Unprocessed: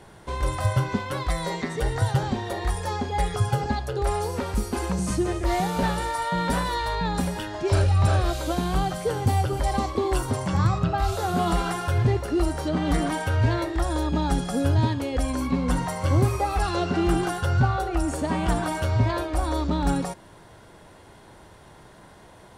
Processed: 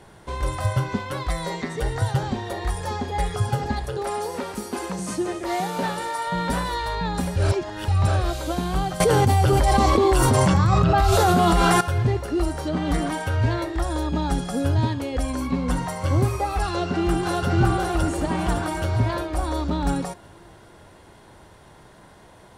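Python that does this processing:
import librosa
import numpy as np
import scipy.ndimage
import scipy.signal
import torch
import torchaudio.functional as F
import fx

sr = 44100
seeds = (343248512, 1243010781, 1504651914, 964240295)

y = fx.echo_throw(x, sr, start_s=2.2, length_s=1.16, ms=580, feedback_pct=80, wet_db=-14.0)
y = fx.highpass(y, sr, hz=200.0, slope=12, at=(3.97, 6.27))
y = fx.env_flatten(y, sr, amount_pct=100, at=(9.0, 11.81))
y = fx.echo_throw(y, sr, start_s=16.69, length_s=0.83, ms=560, feedback_pct=50, wet_db=-1.5)
y = fx.edit(y, sr, fx.reverse_span(start_s=7.36, length_s=0.52), tone=tone)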